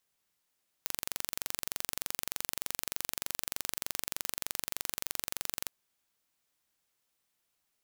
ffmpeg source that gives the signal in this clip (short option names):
-f lavfi -i "aevalsrc='0.501*eq(mod(n,1893),0)':d=4.83:s=44100"